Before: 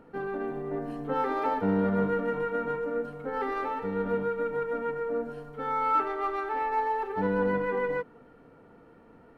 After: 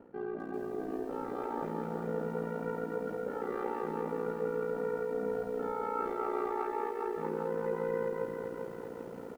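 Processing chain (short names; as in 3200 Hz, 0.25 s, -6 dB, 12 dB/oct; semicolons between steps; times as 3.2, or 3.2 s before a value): bell 360 Hz +10 dB 2.9 oct; notches 50/100/150/200/250/300 Hz; limiter -15 dBFS, peak gain reduction 7 dB; reverse; compressor 4:1, threshold -37 dBFS, peak gain reduction 15 dB; reverse; ring modulator 29 Hz; on a send: loudspeakers at several distances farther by 17 m -9 dB, 77 m -1 dB; on the sum: lo-fi delay 0.397 s, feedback 55%, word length 10-bit, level -5.5 dB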